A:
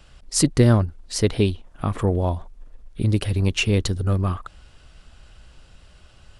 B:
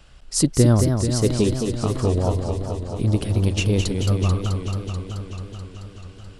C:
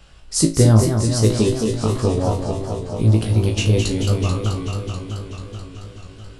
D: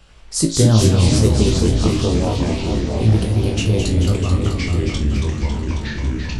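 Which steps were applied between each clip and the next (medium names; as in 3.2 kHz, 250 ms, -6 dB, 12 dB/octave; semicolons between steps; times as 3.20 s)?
dynamic bell 2 kHz, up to -7 dB, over -41 dBFS, Q 0.86; modulated delay 217 ms, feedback 77%, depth 141 cents, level -6 dB
flutter echo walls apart 3.1 m, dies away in 0.25 s; trim +1 dB
ever faster or slower copies 87 ms, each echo -4 st, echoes 3; trim -1 dB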